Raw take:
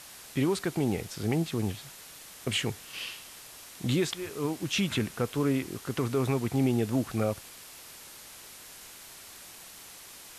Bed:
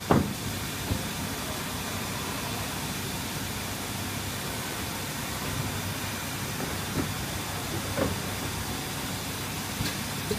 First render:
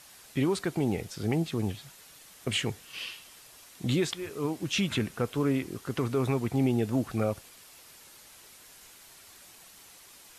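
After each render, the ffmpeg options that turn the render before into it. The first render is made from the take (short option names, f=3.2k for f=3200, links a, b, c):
-af "afftdn=nr=6:nf=-48"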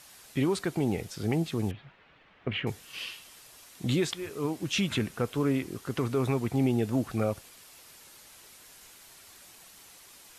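-filter_complex "[0:a]asettb=1/sr,asplit=3[a][b][c];[a]atrim=end=1.714[d];[b]atrim=start=1.71:end=2.67,asetpts=PTS-STARTPTS,afade=t=in:d=0.004:c=qsin,afade=t=out:st=0.956:d=0.004:c=qsin,lowpass=f=2.7k:w=0.5412,lowpass=f=2.7k:w=1.3066[e];[c]atrim=start=2.666[f];[d][e]acrossfade=d=0.004:c1=hsin:c2=qsin[g];[g][f]acrossfade=d=0.004:c1=qsin:c2=hsin"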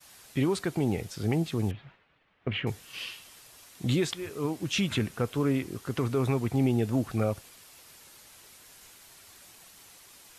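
-af "agate=range=-33dB:threshold=-52dB:ratio=3:detection=peak,equalizer=f=100:w=1.5:g=3"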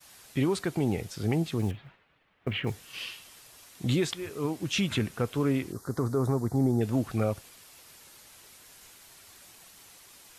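-filter_complex "[0:a]asettb=1/sr,asplit=3[a][b][c];[a]atrim=end=1.604[d];[b]atrim=start=1.6:end=3.15,asetpts=PTS-STARTPTS,afade=t=in:d=0.004:c=qsin,afade=t=out:st=1.546:d=0.004:c=qsin,acrusher=bits=9:mode=log:mix=0:aa=0.000001[e];[c]atrim=start=3.146[f];[d][e]acrossfade=d=0.004:c1=hsin:c2=qsin[g];[g][f]acrossfade=d=0.004:c1=qsin:c2=hsin,asettb=1/sr,asplit=3[h][i][j];[h]atrim=end=5.724[k];[i]atrim=start=5.72:end=6.81,asetpts=PTS-STARTPTS,afade=t=in:d=0.004:c=qsin,afade=t=out:st=1.086:d=0.004:c=qsin,asuperstop=centerf=2700:order=4:qfactor=0.87[l];[j]atrim=start=6.806[m];[k][l]acrossfade=d=0.004:c1=hsin:c2=qsin[n];[n][m]acrossfade=d=0.004:c1=qsin:c2=hsin"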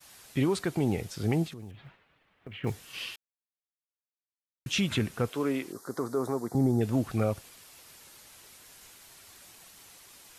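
-filter_complex "[0:a]asettb=1/sr,asplit=3[a][b][c];[a]atrim=end=1.464[d];[b]atrim=start=1.46:end=2.64,asetpts=PTS-STARTPTS,afade=t=in:d=0.004:c=qsin,afade=t=out:st=1.176:d=0.004:c=qsin,acompressor=threshold=-40dB:ratio=8:attack=3.2:release=140:knee=1:detection=peak[e];[c]atrim=start=2.636[f];[d][e]acrossfade=d=0.004:c1=hsin:c2=qsin[g];[g][f]acrossfade=d=0.004:c1=qsin:c2=hsin,asettb=1/sr,asplit=3[h][i][j];[h]atrim=end=5.304[k];[i]atrim=start=5.3:end=6.55,asetpts=PTS-STARTPTS,afade=t=in:d=0.004:c=qsin,afade=t=out:st=1.246:d=0.004:c=qsin,highpass=270[l];[j]atrim=start=6.546[m];[k][l]acrossfade=d=0.004:c1=hsin:c2=qsin[n];[n][m]acrossfade=d=0.004:c1=qsin:c2=hsin,asplit=3[o][p][q];[o]atrim=end=3.16,asetpts=PTS-STARTPTS,afade=t=out:st=3.156:d=0.004:c=hsin[r];[p]atrim=start=3.16:end=4.66,asetpts=PTS-STARTPTS,volume=0[s];[q]atrim=start=4.66,asetpts=PTS-STARTPTS,afade=t=in:d=0.004:c=hsin[t];[r][s][t]concat=n=3:v=0:a=1"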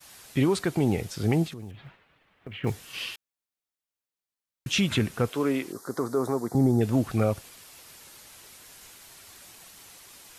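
-af "volume=3.5dB"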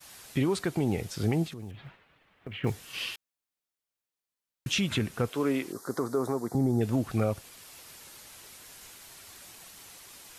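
-af "alimiter=limit=-18dB:level=0:latency=1:release=416"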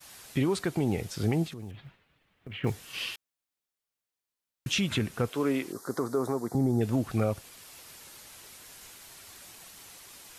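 -filter_complex "[0:a]asettb=1/sr,asplit=3[a][b][c];[a]atrim=end=1.804[d];[b]atrim=start=1.8:end=2.5,asetpts=PTS-STARTPTS,afade=t=in:d=0.004:c=qsin,afade=t=out:st=0.696:d=0.004:c=qsin,equalizer=f=980:w=0.32:g=-8[e];[c]atrim=start=2.496[f];[d][e]acrossfade=d=0.004:c1=hsin:c2=qsin[g];[g][f]acrossfade=d=0.004:c1=qsin:c2=hsin"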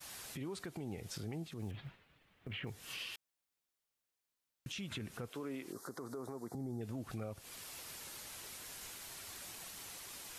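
-af "acompressor=threshold=-34dB:ratio=4,alimiter=level_in=10.5dB:limit=-24dB:level=0:latency=1:release=223,volume=-10.5dB"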